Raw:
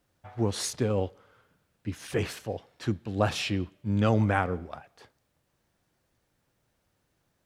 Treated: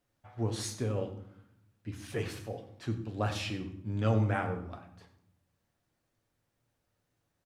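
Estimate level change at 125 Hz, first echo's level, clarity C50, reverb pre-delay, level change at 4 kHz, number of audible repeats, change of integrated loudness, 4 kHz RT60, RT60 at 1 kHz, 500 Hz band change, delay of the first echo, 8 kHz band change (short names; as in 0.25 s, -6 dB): -3.0 dB, -15.5 dB, 10.0 dB, 7 ms, -6.5 dB, 1, -5.0 dB, 0.45 s, 0.65 s, -6.0 dB, 95 ms, -6.5 dB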